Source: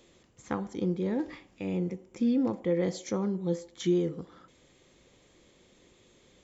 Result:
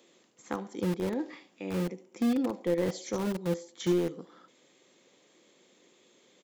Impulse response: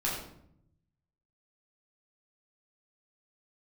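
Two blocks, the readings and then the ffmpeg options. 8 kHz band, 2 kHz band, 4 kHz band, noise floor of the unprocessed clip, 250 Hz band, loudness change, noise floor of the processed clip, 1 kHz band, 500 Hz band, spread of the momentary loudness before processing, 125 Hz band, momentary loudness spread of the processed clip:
can't be measured, +2.0 dB, +1.5 dB, −63 dBFS, −1.5 dB, −1.0 dB, −65 dBFS, +1.5 dB, −0.5 dB, 9 LU, −1.5 dB, 10 LU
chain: -filter_complex "[0:a]acrossover=split=180|2700[link_01][link_02][link_03];[link_01]acrusher=bits=5:mix=0:aa=0.000001[link_04];[link_03]aecho=1:1:74:0.562[link_05];[link_04][link_02][link_05]amix=inputs=3:normalize=0,volume=-1dB"

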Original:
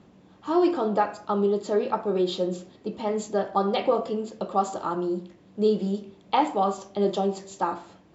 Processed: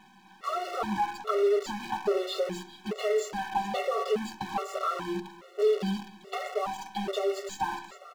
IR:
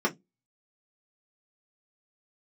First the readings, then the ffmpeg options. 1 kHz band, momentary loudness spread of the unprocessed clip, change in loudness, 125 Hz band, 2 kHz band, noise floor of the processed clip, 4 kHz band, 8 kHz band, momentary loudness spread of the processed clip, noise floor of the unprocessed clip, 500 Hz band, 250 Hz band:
−4.5 dB, 8 LU, −4.5 dB, −7.0 dB, +2.0 dB, −55 dBFS, −0.5 dB, can't be measured, 10 LU, −55 dBFS, −3.5 dB, −9.0 dB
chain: -filter_complex "[0:a]highpass=frequency=1000:poles=1,aecho=1:1:5.2:0.79,acompressor=threshold=-32dB:ratio=20,acrusher=bits=8:dc=4:mix=0:aa=0.000001,asplit=2[link_01][link_02];[link_02]highpass=frequency=720:poles=1,volume=19dB,asoftclip=type=tanh:threshold=-19.5dB[link_03];[link_01][link_03]amix=inputs=2:normalize=0,lowpass=frequency=1600:poles=1,volume=-6dB,aecho=1:1:409:0.133,asplit=2[link_04][link_05];[1:a]atrim=start_sample=2205[link_06];[link_05][link_06]afir=irnorm=-1:irlink=0,volume=-23dB[link_07];[link_04][link_07]amix=inputs=2:normalize=0,afftfilt=real='re*gt(sin(2*PI*1.2*pts/sr)*(1-2*mod(floor(b*sr/1024/370),2)),0)':imag='im*gt(sin(2*PI*1.2*pts/sr)*(1-2*mod(floor(b*sr/1024/370),2)),0)':win_size=1024:overlap=0.75,volume=4.5dB"

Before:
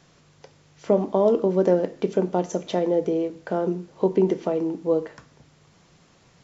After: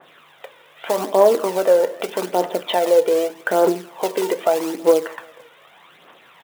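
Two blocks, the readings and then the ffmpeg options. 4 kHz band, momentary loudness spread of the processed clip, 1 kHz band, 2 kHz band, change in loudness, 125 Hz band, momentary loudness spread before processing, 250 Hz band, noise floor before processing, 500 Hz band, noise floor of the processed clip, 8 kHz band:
+13.5 dB, 10 LU, +8.5 dB, +13.5 dB, +4.5 dB, −10.0 dB, 7 LU, −2.0 dB, −58 dBFS, +5.5 dB, −51 dBFS, can't be measured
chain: -af "aresample=8000,aresample=44100,acontrast=41,aecho=1:1:163|326|489:0.0794|0.031|0.0121,acrusher=bits=5:mode=log:mix=0:aa=0.000001,alimiter=limit=-10.5dB:level=0:latency=1:release=93,aphaser=in_gain=1:out_gain=1:delay=2.2:decay=0.49:speed=0.82:type=triangular,highpass=620,adynamicequalizer=threshold=0.0126:dfrequency=1800:dqfactor=0.7:tfrequency=1800:tqfactor=0.7:attack=5:release=100:ratio=0.375:range=2.5:mode=cutabove:tftype=highshelf,volume=7dB"

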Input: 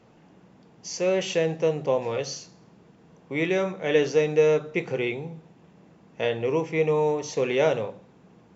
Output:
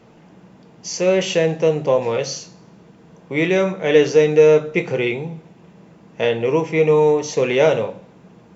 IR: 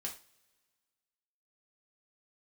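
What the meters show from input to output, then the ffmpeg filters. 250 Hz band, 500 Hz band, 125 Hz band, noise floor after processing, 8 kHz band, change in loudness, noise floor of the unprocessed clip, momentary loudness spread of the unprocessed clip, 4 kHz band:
+7.5 dB, +8.0 dB, +7.5 dB, −49 dBFS, can't be measured, +8.0 dB, −56 dBFS, 13 LU, +7.0 dB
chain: -filter_complex "[0:a]acontrast=31,asplit=2[link_01][link_02];[1:a]atrim=start_sample=2205,asetrate=57330,aresample=44100[link_03];[link_02][link_03]afir=irnorm=-1:irlink=0,volume=-2dB[link_04];[link_01][link_04]amix=inputs=2:normalize=0,volume=-1dB"

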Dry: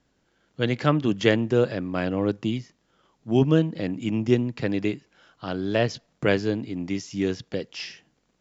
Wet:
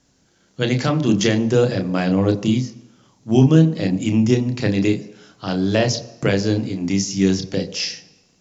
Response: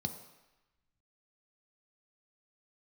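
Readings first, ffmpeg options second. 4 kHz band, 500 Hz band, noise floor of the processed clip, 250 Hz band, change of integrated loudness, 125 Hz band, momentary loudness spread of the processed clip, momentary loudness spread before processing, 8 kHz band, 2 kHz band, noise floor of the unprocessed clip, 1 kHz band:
+7.5 dB, +4.0 dB, −60 dBFS, +7.0 dB, +6.0 dB, +8.5 dB, 9 LU, 12 LU, can't be measured, +3.0 dB, −70 dBFS, +3.5 dB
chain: -filter_complex "[0:a]equalizer=frequency=6400:width_type=o:width=0.9:gain=12.5,alimiter=limit=-10.5dB:level=0:latency=1:release=230,asplit=2[link_01][link_02];[1:a]atrim=start_sample=2205,adelay=30[link_03];[link_02][link_03]afir=irnorm=-1:irlink=0,volume=-7dB[link_04];[link_01][link_04]amix=inputs=2:normalize=0,volume=4dB"

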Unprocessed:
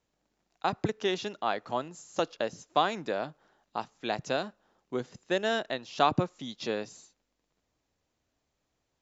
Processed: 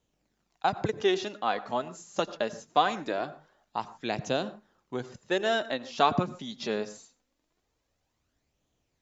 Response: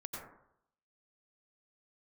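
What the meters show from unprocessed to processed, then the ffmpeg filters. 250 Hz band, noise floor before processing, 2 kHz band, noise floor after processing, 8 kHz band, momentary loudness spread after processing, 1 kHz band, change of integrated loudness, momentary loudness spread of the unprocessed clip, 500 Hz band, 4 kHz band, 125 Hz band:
+1.5 dB, −81 dBFS, +1.5 dB, −79 dBFS, can't be measured, 12 LU, +2.0 dB, +1.5 dB, 10 LU, +1.5 dB, +1.5 dB, 0.0 dB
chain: -filter_complex "[0:a]flanger=delay=0.3:depth=4.7:regen=45:speed=0.23:shape=sinusoidal,asplit=2[link_01][link_02];[1:a]atrim=start_sample=2205,afade=type=out:start_time=0.21:duration=0.01,atrim=end_sample=9702[link_03];[link_02][link_03]afir=irnorm=-1:irlink=0,volume=-11.5dB[link_04];[link_01][link_04]amix=inputs=2:normalize=0,volume=4dB"

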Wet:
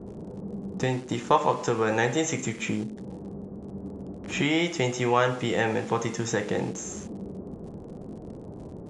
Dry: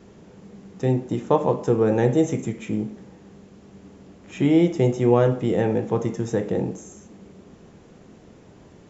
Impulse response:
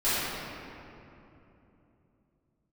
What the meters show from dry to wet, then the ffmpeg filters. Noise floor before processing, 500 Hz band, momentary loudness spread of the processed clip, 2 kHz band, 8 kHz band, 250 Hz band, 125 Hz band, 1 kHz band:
−50 dBFS, −5.5 dB, 17 LU, +8.0 dB, can't be measured, −6.5 dB, −7.0 dB, +2.5 dB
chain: -filter_complex "[0:a]acrossover=split=970[link_01][link_02];[link_01]acompressor=threshold=-37dB:ratio=4[link_03];[link_02]aeval=exprs='val(0)*gte(abs(val(0)),0.00211)':channel_layout=same[link_04];[link_03][link_04]amix=inputs=2:normalize=0,aresample=22050,aresample=44100,volume=8.5dB"

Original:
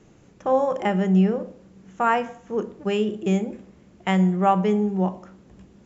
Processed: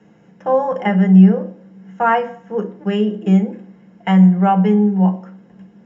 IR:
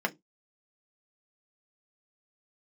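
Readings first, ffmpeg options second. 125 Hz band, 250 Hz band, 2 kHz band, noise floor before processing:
can't be measured, +9.5 dB, +4.5 dB, −54 dBFS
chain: -filter_complex "[1:a]atrim=start_sample=2205[link_01];[0:a][link_01]afir=irnorm=-1:irlink=0,volume=-5dB"

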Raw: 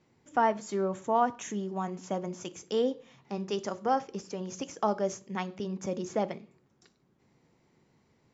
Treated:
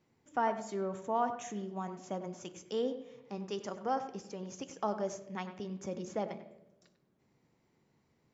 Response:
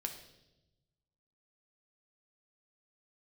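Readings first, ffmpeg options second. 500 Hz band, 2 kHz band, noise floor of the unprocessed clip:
−5.5 dB, −5.5 dB, −69 dBFS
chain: -filter_complex "[0:a]asplit=2[link_01][link_02];[link_02]lowpass=2900[link_03];[1:a]atrim=start_sample=2205,adelay=96[link_04];[link_03][link_04]afir=irnorm=-1:irlink=0,volume=-9dB[link_05];[link_01][link_05]amix=inputs=2:normalize=0,volume=-6dB"

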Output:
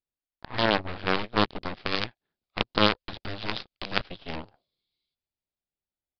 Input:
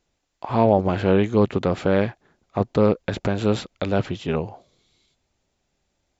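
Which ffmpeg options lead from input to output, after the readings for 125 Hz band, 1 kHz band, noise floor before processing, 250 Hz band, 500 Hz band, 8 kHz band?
−12.5 dB, −3.5 dB, −75 dBFS, −10.5 dB, −11.0 dB, can't be measured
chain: -filter_complex "[0:a]aeval=exprs='0.708*(cos(1*acos(clip(val(0)/0.708,-1,1)))-cos(1*PI/2))+0.251*(cos(8*acos(clip(val(0)/0.708,-1,1)))-cos(8*PI/2))':channel_layout=same,acrossover=split=2800[link_01][link_02];[link_02]dynaudnorm=framelen=240:gausssize=11:maxgain=15dB[link_03];[link_01][link_03]amix=inputs=2:normalize=0,aeval=exprs='0.708*(cos(1*acos(clip(val(0)/0.708,-1,1)))-cos(1*PI/2))+0.316*(cos(2*acos(clip(val(0)/0.708,-1,1)))-cos(2*PI/2))+0.2*(cos(3*acos(clip(val(0)/0.708,-1,1)))-cos(3*PI/2))+0.00631*(cos(7*acos(clip(val(0)/0.708,-1,1)))-cos(7*PI/2))+0.0501*(cos(8*acos(clip(val(0)/0.708,-1,1)))-cos(8*PI/2))':channel_layout=same,aresample=11025,aresample=44100,volume=-5dB"

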